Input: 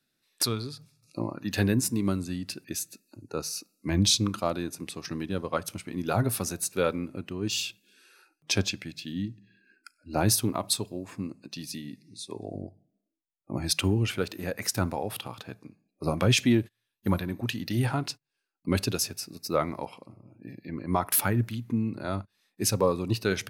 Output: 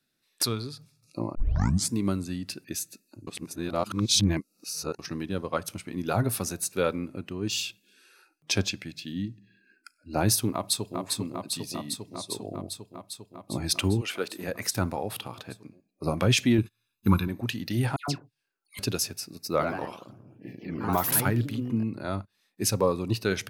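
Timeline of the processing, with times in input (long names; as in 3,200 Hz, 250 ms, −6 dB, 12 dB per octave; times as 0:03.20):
0:01.35: tape start 0.57 s
0:03.27–0:04.99: reverse
0:10.53–0:11.00: delay throw 400 ms, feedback 80%, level −3.5 dB
0:14.00–0:14.47: high-pass filter 560 Hz → 150 Hz
0:16.58–0:17.28: comb filter 0.8 ms, depth 96%
0:17.96–0:18.79: all-pass dispersion lows, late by 122 ms, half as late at 1,700 Hz
0:19.48–0:22.01: delay with pitch and tempo change per echo 96 ms, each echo +2 semitones, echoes 3, each echo −6 dB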